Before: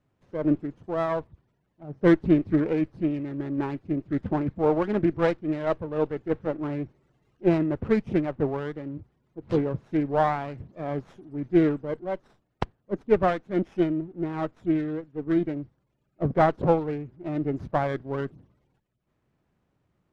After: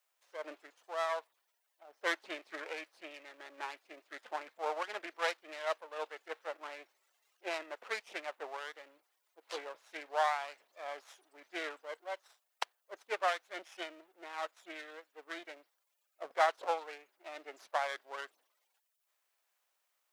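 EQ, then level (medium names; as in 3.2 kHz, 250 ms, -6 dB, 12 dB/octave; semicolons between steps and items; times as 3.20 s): ladder high-pass 470 Hz, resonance 25%; differentiator; +15.5 dB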